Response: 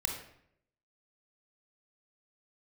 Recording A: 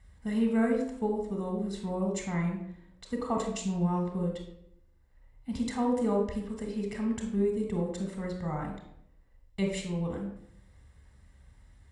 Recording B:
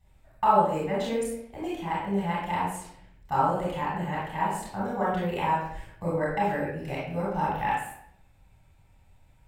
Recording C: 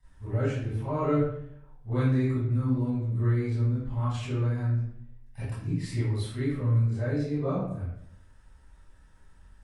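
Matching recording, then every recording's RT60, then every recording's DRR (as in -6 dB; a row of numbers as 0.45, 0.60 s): A; 0.70, 0.70, 0.70 s; 2.0, -6.0, -14.0 dB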